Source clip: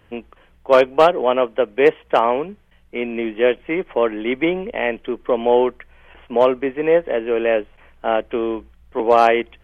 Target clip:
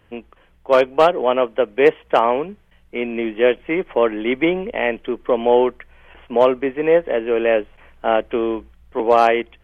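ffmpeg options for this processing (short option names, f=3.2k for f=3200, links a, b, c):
-af "dynaudnorm=f=430:g=5:m=11.5dB,volume=-2dB"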